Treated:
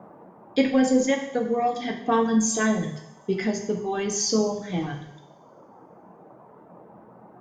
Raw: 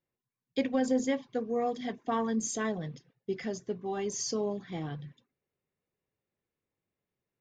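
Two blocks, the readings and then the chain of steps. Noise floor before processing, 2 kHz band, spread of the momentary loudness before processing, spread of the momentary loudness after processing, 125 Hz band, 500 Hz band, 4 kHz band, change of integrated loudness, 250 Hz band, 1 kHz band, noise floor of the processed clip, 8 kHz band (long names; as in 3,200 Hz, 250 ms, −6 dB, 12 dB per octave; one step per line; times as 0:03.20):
below −85 dBFS, +10.5 dB, 10 LU, 9 LU, +8.0 dB, +7.5 dB, +10.0 dB, +8.5 dB, +9.0 dB, +8.5 dB, −52 dBFS, +9.5 dB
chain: noise in a band 110–960 Hz −56 dBFS
reverb reduction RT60 1.4 s
coupled-rooms reverb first 0.72 s, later 2.4 s, from −22 dB, DRR 2 dB
level +8 dB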